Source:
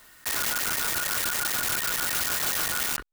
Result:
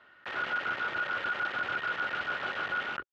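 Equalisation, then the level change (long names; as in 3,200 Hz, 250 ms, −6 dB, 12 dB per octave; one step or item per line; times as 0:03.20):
loudspeaker in its box 100–3,100 Hz, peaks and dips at 380 Hz +5 dB, 560 Hz +7 dB, 810 Hz +4 dB, 1,400 Hz +10 dB, 3,000 Hz +4 dB
−7.0 dB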